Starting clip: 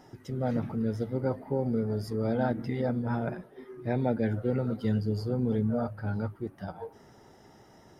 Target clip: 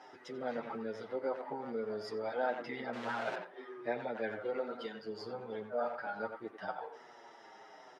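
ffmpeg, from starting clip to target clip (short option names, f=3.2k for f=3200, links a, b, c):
-filter_complex "[0:a]asettb=1/sr,asplit=3[a][b][c];[a]atrim=end=2.934[d];[b]atrim=start=2.93:end=3.35,asetpts=PTS-STARTPTS,afade=t=in:d=0.004:c=qsin,afade=t=out:st=0.416:d=0.004:c=qsin,aeval=exprs='val(0)+0.5*0.02*sgn(val(0))':c=same[e];[c]atrim=start=3.346[f];[d][e]acrossfade=d=0.004:c1=hsin:c2=qsin[g];[g][f]acrossfade=d=0.004:c1=qsin:c2=hsin,asplit=2[h][i];[i]adelay=90,highpass=300,lowpass=3.4k,asoftclip=type=hard:threshold=-26.5dB,volume=-9dB[j];[h][j]amix=inputs=2:normalize=0,acompressor=threshold=-29dB:ratio=6,highpass=640,lowpass=4k,asplit=2[k][l];[l]adelay=7.4,afreqshift=-0.9[m];[k][m]amix=inputs=2:normalize=1,volume=8dB"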